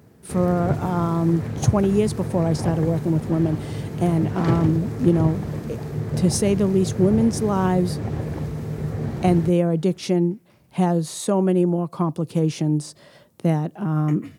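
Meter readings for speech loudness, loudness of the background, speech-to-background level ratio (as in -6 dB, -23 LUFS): -22.0 LUFS, -28.5 LUFS, 6.5 dB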